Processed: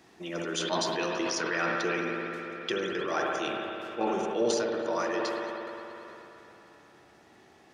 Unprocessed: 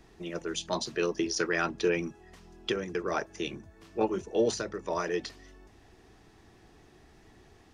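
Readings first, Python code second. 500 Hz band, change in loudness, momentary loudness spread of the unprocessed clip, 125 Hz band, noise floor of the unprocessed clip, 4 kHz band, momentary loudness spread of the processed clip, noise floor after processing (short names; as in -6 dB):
+0.5 dB, +1.0 dB, 11 LU, -2.0 dB, -58 dBFS, +2.5 dB, 12 LU, -58 dBFS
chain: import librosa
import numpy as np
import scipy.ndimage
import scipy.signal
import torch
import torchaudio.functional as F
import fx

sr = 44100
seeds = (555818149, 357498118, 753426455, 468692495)

y = scipy.signal.sosfilt(scipy.signal.butter(2, 110.0, 'highpass', fs=sr, output='sos'), x)
y = fx.low_shelf(y, sr, hz=200.0, db=-9.0)
y = fx.notch(y, sr, hz=430.0, q=12.0)
y = fx.rider(y, sr, range_db=4, speed_s=2.0)
y = fx.echo_wet_bandpass(y, sr, ms=134, feedback_pct=79, hz=1000.0, wet_db=-10.0)
y = fx.rev_spring(y, sr, rt60_s=3.4, pass_ms=(59,), chirp_ms=50, drr_db=1.5)
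y = fx.sustainer(y, sr, db_per_s=21.0)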